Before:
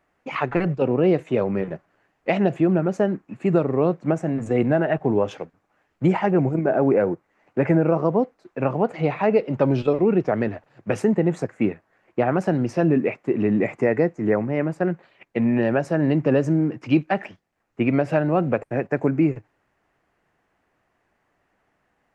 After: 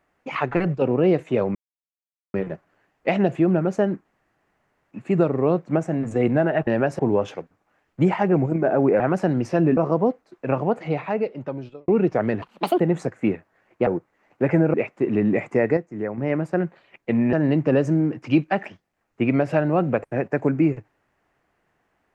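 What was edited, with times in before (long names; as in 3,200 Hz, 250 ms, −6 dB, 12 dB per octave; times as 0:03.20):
0:01.55: splice in silence 0.79 s
0:03.26: splice in room tone 0.86 s
0:07.03–0:07.90: swap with 0:12.24–0:13.01
0:08.73–0:10.01: fade out
0:10.55–0:11.17: play speed 164%
0:14.04–0:14.45: clip gain −7.5 dB
0:15.60–0:15.92: move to 0:05.02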